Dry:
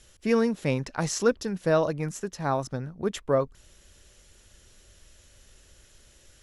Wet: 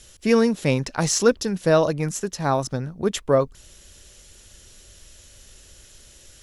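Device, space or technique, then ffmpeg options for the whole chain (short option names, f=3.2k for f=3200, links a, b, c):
exciter from parts: -filter_complex "[0:a]asplit=2[a][b];[b]highpass=2.4k,asoftclip=type=tanh:threshold=-24dB,volume=-4dB[c];[a][c]amix=inputs=2:normalize=0,volume=5.5dB"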